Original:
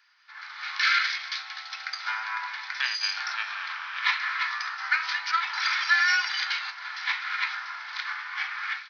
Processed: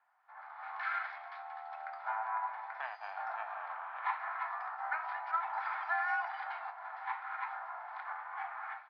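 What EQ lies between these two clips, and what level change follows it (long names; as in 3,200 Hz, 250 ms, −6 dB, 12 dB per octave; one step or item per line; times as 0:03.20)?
low-pass with resonance 720 Hz, resonance Q 4.9
high-frequency loss of the air 110 metres
0.0 dB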